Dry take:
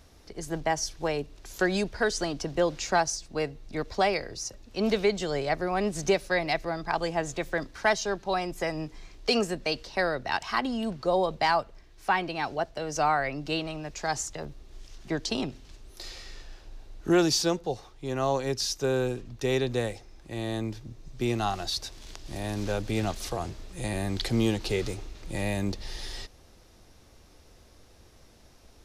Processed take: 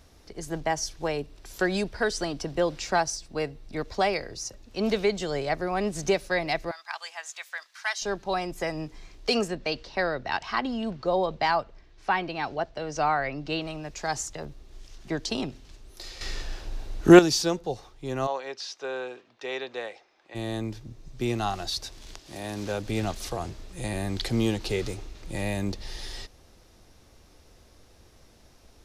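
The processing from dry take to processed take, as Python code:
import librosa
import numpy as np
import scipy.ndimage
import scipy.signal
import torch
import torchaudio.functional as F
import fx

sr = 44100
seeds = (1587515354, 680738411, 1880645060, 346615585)

y = fx.notch(x, sr, hz=6600.0, q=12.0, at=(1.06, 3.81))
y = fx.bessel_highpass(y, sr, hz=1500.0, order=4, at=(6.71, 8.02))
y = fx.lowpass(y, sr, hz=5300.0, slope=12, at=(9.48, 13.62))
y = fx.bandpass_edges(y, sr, low_hz=620.0, high_hz=3500.0, at=(18.26, 20.34), fade=0.02)
y = fx.highpass(y, sr, hz=fx.line((22.18, 350.0), (22.85, 84.0)), slope=6, at=(22.18, 22.85), fade=0.02)
y = fx.edit(y, sr, fx.clip_gain(start_s=16.21, length_s=0.98, db=10.5), tone=tone)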